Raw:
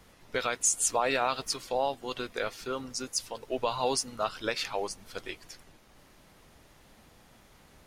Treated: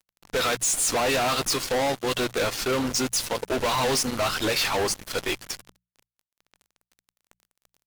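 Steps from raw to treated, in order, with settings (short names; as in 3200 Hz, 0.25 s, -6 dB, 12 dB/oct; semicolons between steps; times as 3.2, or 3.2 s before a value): fuzz box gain 43 dB, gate -48 dBFS; notches 60/120/180 Hz; gain -8.5 dB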